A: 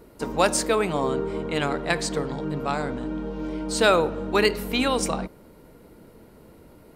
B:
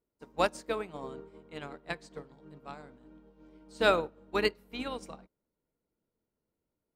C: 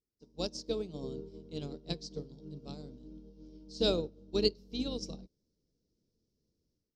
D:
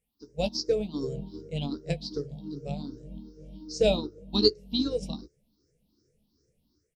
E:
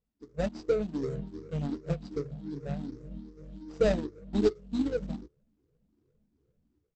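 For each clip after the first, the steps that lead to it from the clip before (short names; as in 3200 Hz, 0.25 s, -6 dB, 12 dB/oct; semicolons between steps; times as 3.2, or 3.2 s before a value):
dynamic EQ 10000 Hz, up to -5 dB, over -44 dBFS, Q 0.76; upward expander 2.5:1, over -37 dBFS; gain -4.5 dB
AGC gain up to 13 dB; EQ curve 110 Hz 0 dB, 450 Hz -6 dB, 830 Hz -20 dB, 1900 Hz -29 dB, 3100 Hz -10 dB, 5400 Hz +7 dB, 9100 Hz -20 dB; gain -4 dB
moving spectral ripple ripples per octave 0.5, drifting +2.6 Hz, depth 21 dB; in parallel at -3 dB: compressor, threshold -35 dBFS, peak gain reduction 17 dB; on the sum: doubler 14 ms -9 dB
median filter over 41 samples; brick-wall FIR low-pass 8100 Hz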